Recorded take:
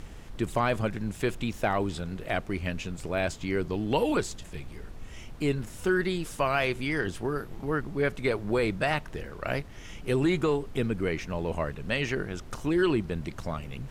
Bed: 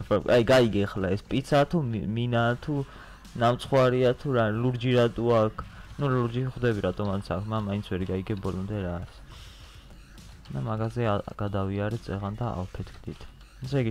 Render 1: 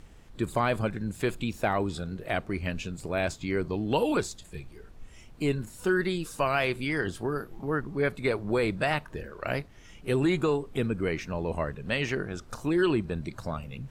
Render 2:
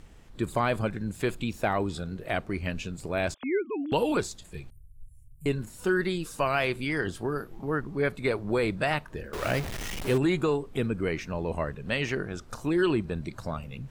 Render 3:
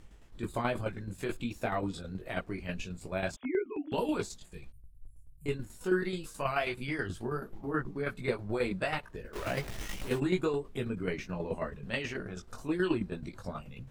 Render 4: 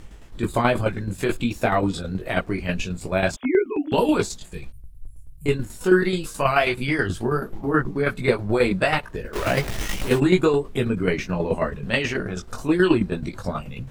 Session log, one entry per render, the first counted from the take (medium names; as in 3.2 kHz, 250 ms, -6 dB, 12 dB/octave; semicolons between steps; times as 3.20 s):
noise print and reduce 8 dB
3.34–3.92 s: formants replaced by sine waves; 4.70–5.46 s: elliptic band-stop 120–10000 Hz; 9.33–10.18 s: jump at every zero crossing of -29.5 dBFS
chorus voices 6, 1.1 Hz, delay 19 ms, depth 3 ms; tremolo saw down 9.3 Hz, depth 60%
trim +12 dB